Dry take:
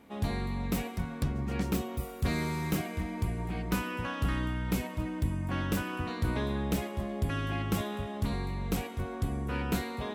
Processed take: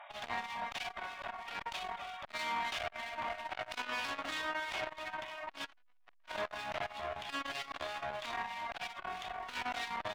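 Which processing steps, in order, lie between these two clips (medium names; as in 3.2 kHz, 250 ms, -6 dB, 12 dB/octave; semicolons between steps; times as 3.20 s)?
CVSD coder 64 kbps; FFT band-pass 560–3800 Hz; reverb removal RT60 0.61 s; in parallel at +2.5 dB: peak limiter -35.5 dBFS, peak gain reduction 10.5 dB; on the sum: one-sided clip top -44.5 dBFS, bottom -27.5 dBFS; harmonic tremolo 3.1 Hz, depth 70%, crossover 2.3 kHz; 3.24–4.07 s: doubling 27 ms -2.5 dB; 5.64–6.27 s: overdrive pedal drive 18 dB, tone 1.4 kHz, clips at -28 dBFS; on a send: feedback delay 61 ms, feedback 28%, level -9 dB; on the sum: transformer saturation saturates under 1.7 kHz; trim +6 dB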